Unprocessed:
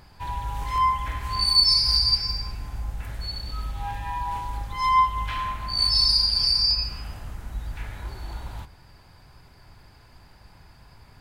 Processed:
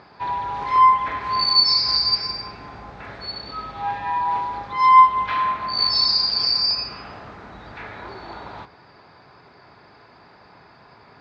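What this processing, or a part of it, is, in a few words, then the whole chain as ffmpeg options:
kitchen radio: -af "highpass=210,equalizer=f=420:t=q:w=4:g=5,equalizer=f=670:t=q:w=4:g=3,equalizer=f=1.2k:t=q:w=4:g=4,equalizer=f=3k:t=q:w=4:g=-7,lowpass=f=4.3k:w=0.5412,lowpass=f=4.3k:w=1.3066,volume=6.5dB"

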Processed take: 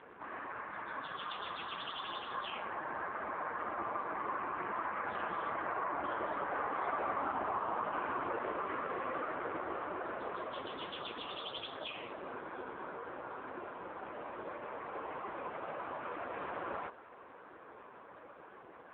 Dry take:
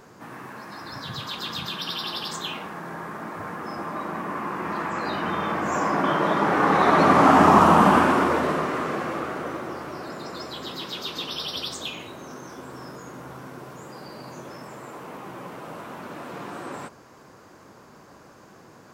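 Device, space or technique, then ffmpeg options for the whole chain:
voicemail: -af "highpass=390,lowpass=2.7k,acompressor=threshold=-33dB:ratio=6,volume=1.5dB" -ar 8000 -c:a libopencore_amrnb -b:a 5150

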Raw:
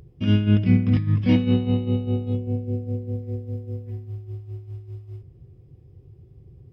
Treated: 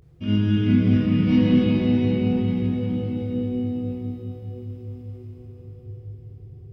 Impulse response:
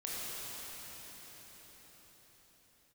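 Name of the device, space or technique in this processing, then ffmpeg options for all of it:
cathedral: -filter_complex "[1:a]atrim=start_sample=2205[a];[0:a][a]afir=irnorm=-1:irlink=0,volume=-1.5dB"

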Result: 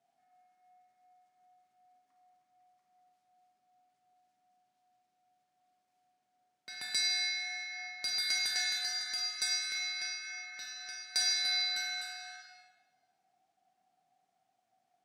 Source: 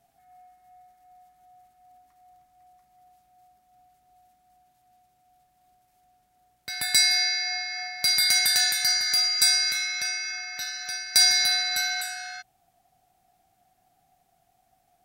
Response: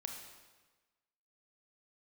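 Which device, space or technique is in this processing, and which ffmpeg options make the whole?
supermarket ceiling speaker: -filter_complex "[0:a]asettb=1/sr,asplit=3[a][b][c];[a]atrim=end=6.734[d];[b]atrim=start=6.73:end=7.85,asetpts=PTS-STARTPTS,afade=t=in:d=0.004:c=qsin,afade=t=out:st=1.116:d=0.004:c=qsin,asubboost=boost=10:cutoff=200[e];[c]atrim=start=7.846[f];[d][e]acrossfade=d=0.004:c1=hsin:c2=qsin[g];[g][f]acrossfade=d=0.004:c1=qsin:c2=hsin,highpass=210,lowpass=7k[h];[1:a]atrim=start_sample=2205[i];[h][i]afir=irnorm=-1:irlink=0,volume=-7.5dB"

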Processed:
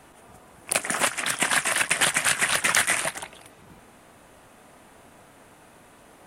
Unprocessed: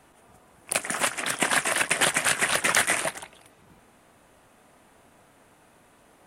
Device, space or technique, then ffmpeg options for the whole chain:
parallel compression: -filter_complex "[0:a]asplit=2[a][b];[b]acompressor=threshold=-33dB:ratio=6,volume=-1dB[c];[a][c]amix=inputs=2:normalize=0,asettb=1/sr,asplit=3[d][e][f];[d]atrim=end=1.084[g];[e]atrim=start=1.08:end=3.16,asetpts=PTS-STARTPTS,afade=t=in:d=0.004:c=qsin,afade=t=out:st=2.076:d=0.004:c=qsin,equalizer=f=410:t=o:w=1.9:g=-6[h];[f]atrim=start=3.156[i];[g][h]acrossfade=d=0.004:c1=hsin:c2=qsin[j];[j][i]acrossfade=d=0.004:c1=qsin:c2=hsin"

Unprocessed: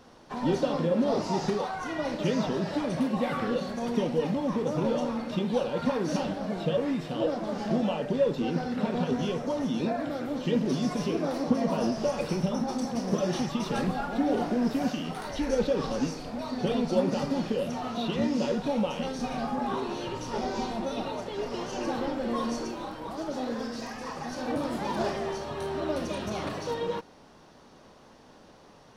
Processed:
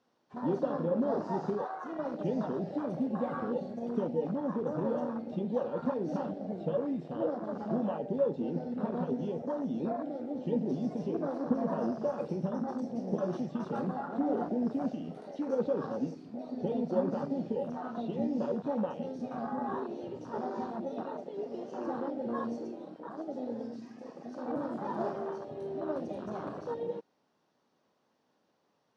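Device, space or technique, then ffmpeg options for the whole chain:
over-cleaned archive recording: -af "highpass=150,lowpass=7.9k,afwtdn=0.0316,volume=-4dB"

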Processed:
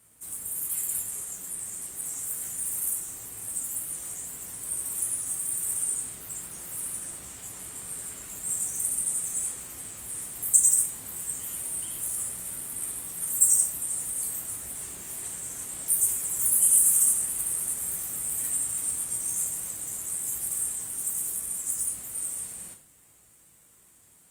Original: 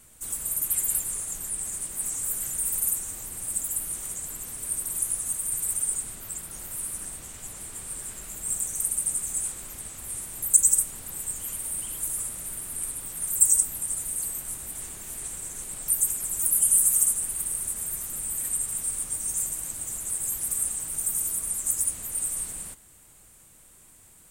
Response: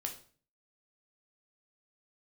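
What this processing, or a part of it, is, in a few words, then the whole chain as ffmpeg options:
far-field microphone of a smart speaker: -filter_complex "[1:a]atrim=start_sample=2205[a];[0:a][a]afir=irnorm=-1:irlink=0,highpass=81,dynaudnorm=f=340:g=31:m=11.5dB,volume=-3.5dB" -ar 48000 -c:a libopus -b:a 32k

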